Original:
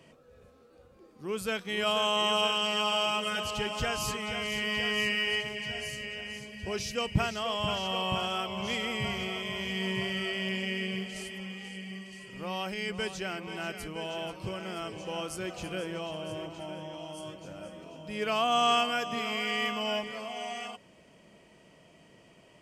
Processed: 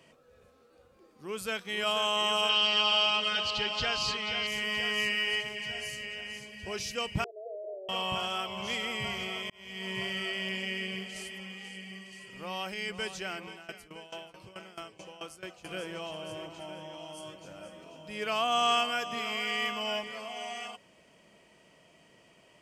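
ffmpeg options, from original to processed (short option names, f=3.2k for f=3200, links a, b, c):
-filter_complex "[0:a]asettb=1/sr,asplit=3[a][b][c];[a]atrim=end=2.494[d];[b]atrim=start=2.49:end=4.47,asetpts=PTS-STARTPTS,afade=t=in:d=0.004:c=qsin,afade=t=out:st=1.976:d=0.004:c=qsin,lowpass=f=4.3k:t=q:w=3.8[e];[c]atrim=start=4.466[f];[d][e]acrossfade=d=0.004:c1=hsin:c2=qsin[g];[g][f]acrossfade=d=0.004:c1=qsin:c2=hsin,asettb=1/sr,asplit=3[h][i][j];[h]atrim=end=7.244[k];[i]atrim=start=7.24:end=7.89,asetpts=PTS-STARTPTS,afade=t=in:d=0.004:c=qsin,afade=t=out:st=0.646:d=0.004:c=qsin,asuperpass=centerf=480:order=12:qfactor=1.6[l];[j]atrim=start=7.886[m];[k][l]acrossfade=d=0.004:c1=hsin:c2=qsin[n];[n][m]acrossfade=d=0.004:c1=qsin:c2=hsin,asettb=1/sr,asplit=3[o][p][q];[o]atrim=end=13.474[r];[p]atrim=start=13.47:end=15.69,asetpts=PTS-STARTPTS,afade=t=in:d=0.004:c=qsin,afade=t=out:st=2.216:d=0.004:c=qsin,aeval=exprs='val(0)*pow(10,-18*if(lt(mod(4.6*n/s,1),2*abs(4.6)/1000),1-mod(4.6*n/s,1)/(2*abs(4.6)/1000),(mod(4.6*n/s,1)-2*abs(4.6)/1000)/(1-2*abs(4.6)/1000))/20)':c=same[s];[q]atrim=start=15.686[t];[r][s]acrossfade=d=0.004:c1=hsin:c2=qsin[u];[u][t]acrossfade=d=0.004:c1=qsin:c2=hsin,asplit=2[v][w];[v]atrim=end=9.5,asetpts=PTS-STARTPTS,afade=t=out:st=9.496:d=0.004:c=hsin[x];[w]atrim=start=9.5,asetpts=PTS-STARTPTS,afade=t=in:d=0.51[y];[x][y]concat=n=2:v=0:a=1,lowshelf=f=490:g=-6.5"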